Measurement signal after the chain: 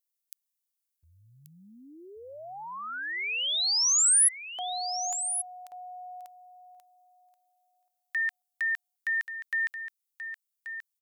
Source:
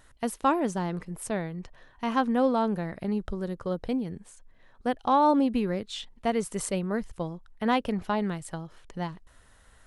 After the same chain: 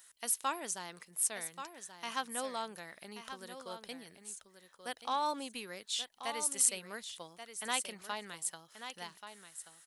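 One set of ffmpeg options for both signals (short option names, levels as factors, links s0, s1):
-af "aderivative,aecho=1:1:1132:0.316,volume=2.11"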